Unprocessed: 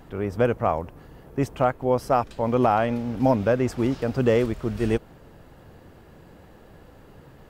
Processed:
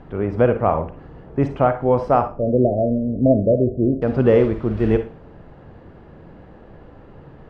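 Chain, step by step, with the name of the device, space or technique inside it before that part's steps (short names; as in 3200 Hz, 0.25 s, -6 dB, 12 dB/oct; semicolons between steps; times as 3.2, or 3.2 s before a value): 2.22–4.02 Chebyshev low-pass 680 Hz, order 8; phone in a pocket (LPF 3700 Hz 12 dB/oct; high shelf 2200 Hz -10 dB); Schroeder reverb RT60 0.33 s, DRR 8 dB; gain +5.5 dB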